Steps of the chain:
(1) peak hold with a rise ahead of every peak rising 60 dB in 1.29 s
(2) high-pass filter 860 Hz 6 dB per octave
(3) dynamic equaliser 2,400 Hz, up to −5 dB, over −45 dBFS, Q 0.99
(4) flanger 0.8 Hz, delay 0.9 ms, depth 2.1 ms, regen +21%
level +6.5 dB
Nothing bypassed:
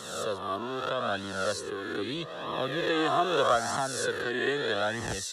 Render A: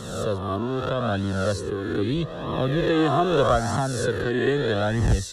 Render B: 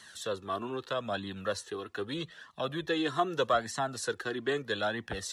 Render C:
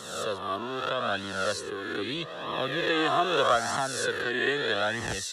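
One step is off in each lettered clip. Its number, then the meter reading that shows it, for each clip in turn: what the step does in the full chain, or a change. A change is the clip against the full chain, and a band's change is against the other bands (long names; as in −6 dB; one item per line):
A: 2, 125 Hz band +15.0 dB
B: 1, 250 Hz band +2.5 dB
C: 3, 2 kHz band +3.0 dB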